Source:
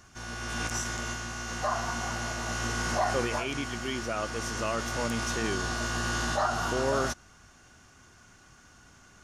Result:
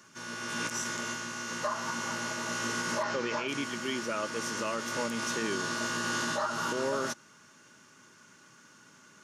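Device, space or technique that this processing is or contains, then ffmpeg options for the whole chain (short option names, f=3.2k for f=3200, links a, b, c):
PA system with an anti-feedback notch: -filter_complex "[0:a]asplit=3[a][b][c];[a]afade=t=out:st=3.02:d=0.02[d];[b]lowpass=f=6.2k:w=0.5412,lowpass=f=6.2k:w=1.3066,afade=t=in:st=3.02:d=0.02,afade=t=out:st=3.47:d=0.02[e];[c]afade=t=in:st=3.47:d=0.02[f];[d][e][f]amix=inputs=3:normalize=0,highpass=f=150:w=0.5412,highpass=f=150:w=1.3066,asuperstop=centerf=730:order=8:qfactor=5,alimiter=limit=-21.5dB:level=0:latency=1:release=163"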